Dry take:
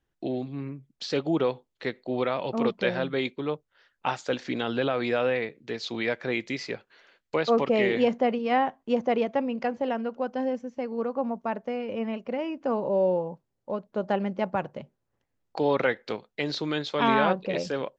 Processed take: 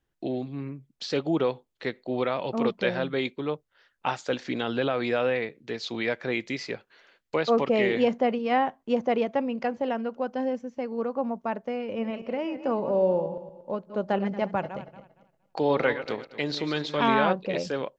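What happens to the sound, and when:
0:11.87–0:17.06: feedback delay that plays each chunk backwards 116 ms, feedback 49%, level −11 dB

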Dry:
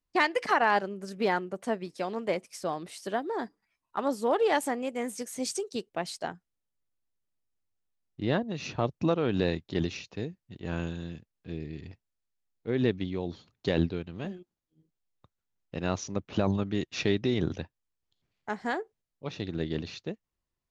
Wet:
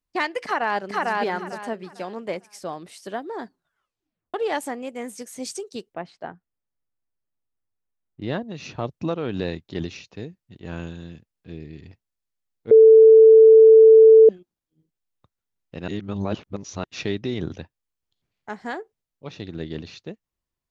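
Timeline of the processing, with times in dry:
0:00.44–0:01.13: delay throw 450 ms, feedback 25%, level −0.5 dB
0:03.44: tape stop 0.90 s
0:05.94–0:08.22: low-pass filter 2,000 Hz
0:12.71–0:14.29: beep over 443 Hz −6.5 dBFS
0:15.88–0:16.84: reverse

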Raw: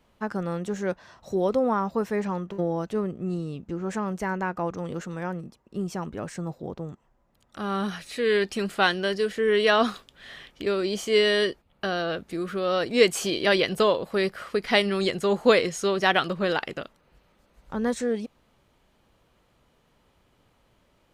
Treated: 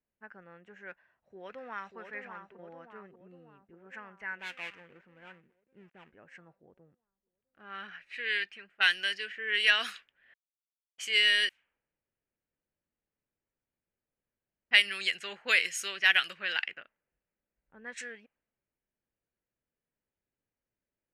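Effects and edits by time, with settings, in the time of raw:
0:00.90–0:01.97: delay throw 590 ms, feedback 65%, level −6 dB
0:04.39–0:06.13: gap after every zero crossing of 0.22 ms
0:08.20–0:08.80: fade out, to −10.5 dB
0:10.34–0:10.98: silence
0:11.49–0:14.71: fill with room tone
whole clip: first-order pre-emphasis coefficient 0.97; low-pass that shuts in the quiet parts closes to 380 Hz, open at −34 dBFS; flat-topped bell 2,100 Hz +13.5 dB 1.2 octaves

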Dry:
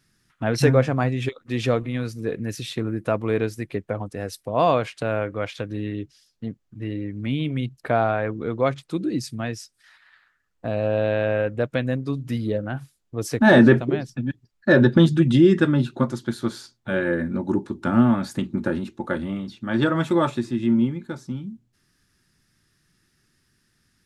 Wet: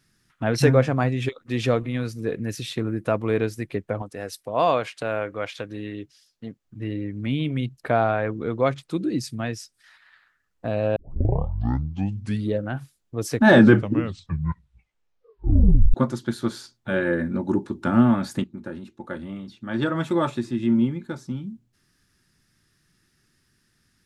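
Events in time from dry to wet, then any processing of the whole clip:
0:04.02–0:06.65: low-shelf EQ 260 Hz −9 dB
0:10.96: tape start 1.55 s
0:13.51: tape stop 2.43 s
0:18.44–0:20.95: fade in, from −13 dB

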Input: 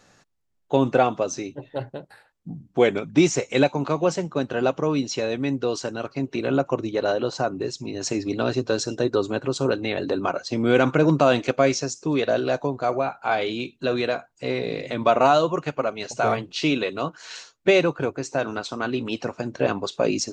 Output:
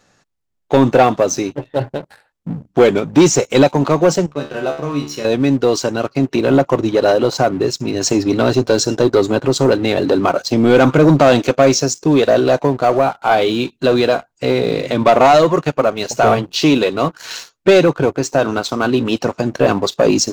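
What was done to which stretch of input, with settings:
0:04.26–0:05.25: tuned comb filter 73 Hz, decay 0.45 s, mix 90%
whole clip: dynamic equaliser 2,100 Hz, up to −6 dB, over −42 dBFS, Q 1.5; leveller curve on the samples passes 2; level +4 dB

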